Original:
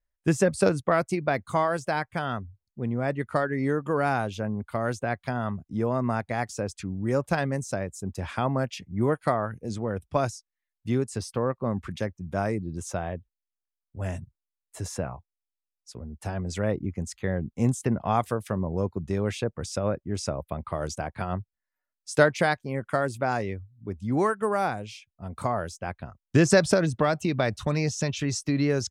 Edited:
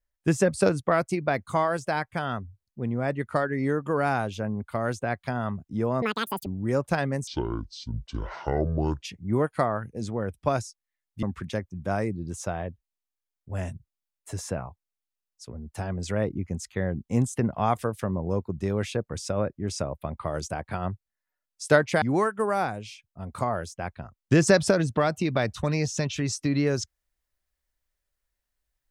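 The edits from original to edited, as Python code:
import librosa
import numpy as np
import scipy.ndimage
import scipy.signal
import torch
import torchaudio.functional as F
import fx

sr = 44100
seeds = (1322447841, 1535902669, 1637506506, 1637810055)

y = fx.edit(x, sr, fx.speed_span(start_s=6.02, length_s=0.84, speed=1.9),
    fx.speed_span(start_s=7.67, length_s=1.03, speed=0.59),
    fx.cut(start_s=10.91, length_s=0.79),
    fx.cut(start_s=22.49, length_s=1.56), tone=tone)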